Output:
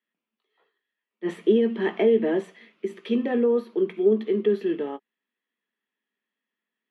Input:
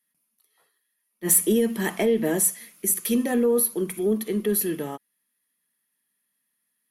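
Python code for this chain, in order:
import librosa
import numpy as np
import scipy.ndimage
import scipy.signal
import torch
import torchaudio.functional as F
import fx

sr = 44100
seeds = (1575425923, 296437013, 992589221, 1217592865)

y = scipy.signal.sosfilt(scipy.signal.cheby1(3, 1.0, [210.0, 3200.0], 'bandpass', fs=sr, output='sos'), x)
y = fx.peak_eq(y, sr, hz=400.0, db=9.0, octaves=0.49)
y = fx.doubler(y, sr, ms=18.0, db=-13)
y = y * 10.0 ** (-2.0 / 20.0)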